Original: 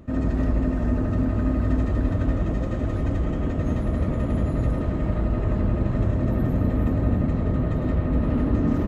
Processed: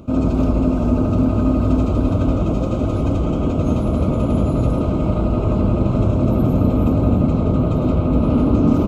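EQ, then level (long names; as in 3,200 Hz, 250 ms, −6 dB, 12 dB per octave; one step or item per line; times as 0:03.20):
Butterworth band-reject 1,800 Hz, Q 2.1
low-shelf EQ 64 Hz −10 dB
+8.5 dB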